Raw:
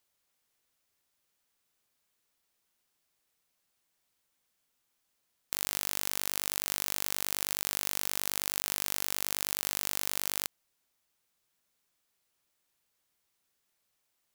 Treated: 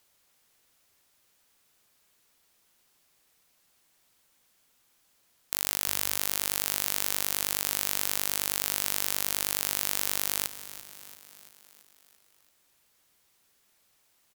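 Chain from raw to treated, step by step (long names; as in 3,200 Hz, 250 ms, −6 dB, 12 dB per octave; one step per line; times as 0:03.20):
sine wavefolder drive 4 dB, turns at −4.5 dBFS
echo with shifted repeats 338 ms, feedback 58%, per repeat +32 Hz, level −14.5 dB
level +2.5 dB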